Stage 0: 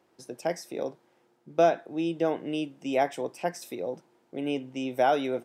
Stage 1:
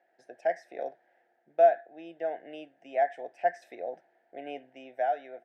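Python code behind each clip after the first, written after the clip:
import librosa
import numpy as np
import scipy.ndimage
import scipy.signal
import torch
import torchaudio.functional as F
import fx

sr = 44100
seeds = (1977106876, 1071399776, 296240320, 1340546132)

y = fx.rider(x, sr, range_db=5, speed_s=0.5)
y = fx.double_bandpass(y, sr, hz=1100.0, octaves=1.3)
y = y * librosa.db_to_amplitude(3.0)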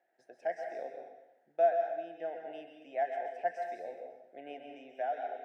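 y = fx.rev_plate(x, sr, seeds[0], rt60_s=0.87, hf_ratio=0.95, predelay_ms=115, drr_db=3.0)
y = y * librosa.db_to_amplitude(-6.5)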